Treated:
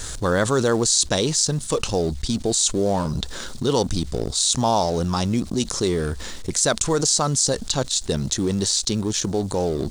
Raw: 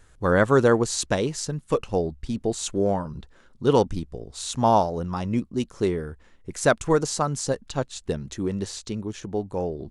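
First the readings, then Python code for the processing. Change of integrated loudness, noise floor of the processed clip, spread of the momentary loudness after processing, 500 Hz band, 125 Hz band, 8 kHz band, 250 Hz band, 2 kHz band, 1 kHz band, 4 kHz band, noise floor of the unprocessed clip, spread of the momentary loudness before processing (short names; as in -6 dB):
+3.5 dB, -34 dBFS, 7 LU, +0.5 dB, +3.5 dB, +12.0 dB, +2.5 dB, -0.5 dB, 0.0 dB, +12.0 dB, -55 dBFS, 12 LU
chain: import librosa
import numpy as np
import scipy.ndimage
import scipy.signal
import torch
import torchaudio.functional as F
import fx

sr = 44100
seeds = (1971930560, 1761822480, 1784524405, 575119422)

y = fx.law_mismatch(x, sr, coded='A')
y = fx.band_shelf(y, sr, hz=5700.0, db=12.5, octaves=1.7)
y = fx.env_flatten(y, sr, amount_pct=70)
y = F.gain(torch.from_numpy(y), -4.0).numpy()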